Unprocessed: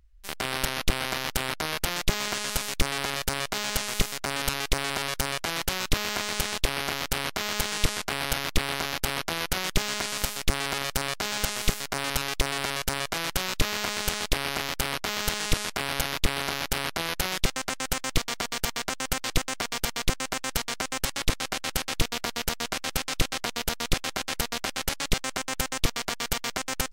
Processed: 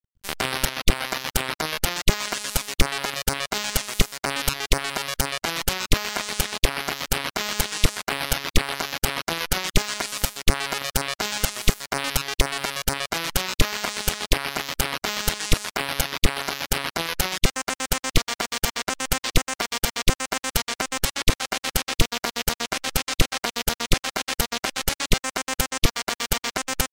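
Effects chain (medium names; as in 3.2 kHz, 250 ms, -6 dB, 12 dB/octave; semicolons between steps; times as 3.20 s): reverb removal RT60 1.5 s; crossover distortion -51 dBFS; trim +6 dB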